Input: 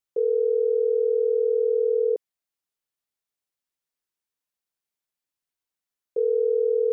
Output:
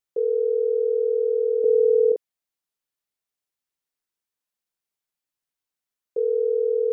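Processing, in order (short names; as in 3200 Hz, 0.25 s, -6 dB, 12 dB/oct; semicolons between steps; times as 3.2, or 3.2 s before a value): 1.64–2.12 low shelf 380 Hz +11 dB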